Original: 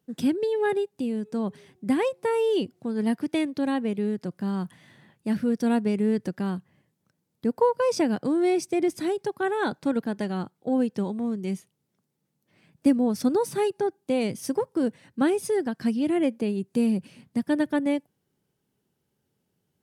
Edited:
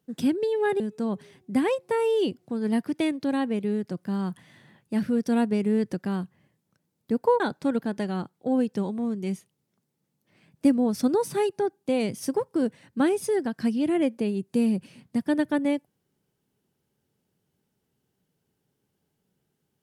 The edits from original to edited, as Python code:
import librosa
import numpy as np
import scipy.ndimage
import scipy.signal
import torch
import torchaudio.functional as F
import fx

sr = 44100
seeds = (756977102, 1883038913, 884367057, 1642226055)

y = fx.edit(x, sr, fx.cut(start_s=0.8, length_s=0.34),
    fx.cut(start_s=7.74, length_s=1.87), tone=tone)